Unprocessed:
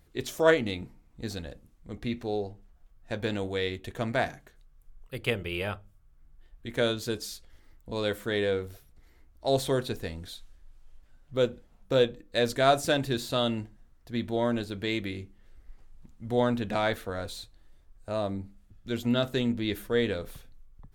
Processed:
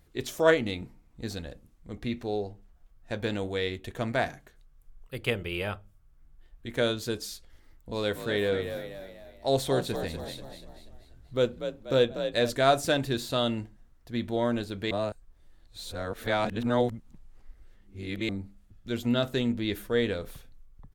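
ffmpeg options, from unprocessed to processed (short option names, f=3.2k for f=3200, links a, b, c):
-filter_complex "[0:a]asplit=3[a][b][c];[a]afade=t=out:st=7.92:d=0.02[d];[b]asplit=6[e][f][g][h][i][j];[f]adelay=242,afreqshift=46,volume=-8.5dB[k];[g]adelay=484,afreqshift=92,volume=-15.4dB[l];[h]adelay=726,afreqshift=138,volume=-22.4dB[m];[i]adelay=968,afreqshift=184,volume=-29.3dB[n];[j]adelay=1210,afreqshift=230,volume=-36.2dB[o];[e][k][l][m][n][o]amix=inputs=6:normalize=0,afade=t=in:st=7.92:d=0.02,afade=t=out:st=12.49:d=0.02[p];[c]afade=t=in:st=12.49:d=0.02[q];[d][p][q]amix=inputs=3:normalize=0,asplit=3[r][s][t];[r]atrim=end=14.912[u];[s]atrim=start=14.908:end=18.292,asetpts=PTS-STARTPTS,areverse[v];[t]atrim=start=18.288[w];[u][v]acrossfade=d=0.004:c1=hsin:c2=hsin[x];[x][w]acrossfade=d=0.004:c1=hsin:c2=hsin"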